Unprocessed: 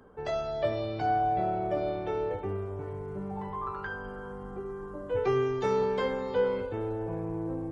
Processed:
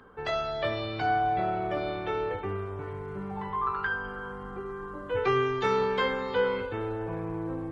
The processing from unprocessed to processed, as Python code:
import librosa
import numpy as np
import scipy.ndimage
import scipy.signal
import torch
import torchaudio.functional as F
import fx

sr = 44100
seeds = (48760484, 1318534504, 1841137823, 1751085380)

y = fx.band_shelf(x, sr, hz=2100.0, db=8.0, octaves=2.3)
y = fx.notch(y, sr, hz=600.0, q=20.0)